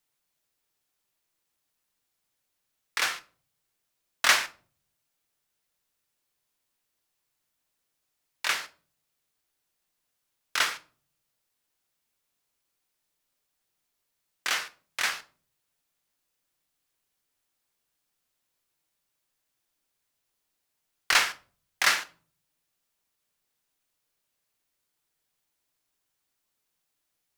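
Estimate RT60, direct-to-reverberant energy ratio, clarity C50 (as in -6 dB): 0.45 s, 9.5 dB, 19.0 dB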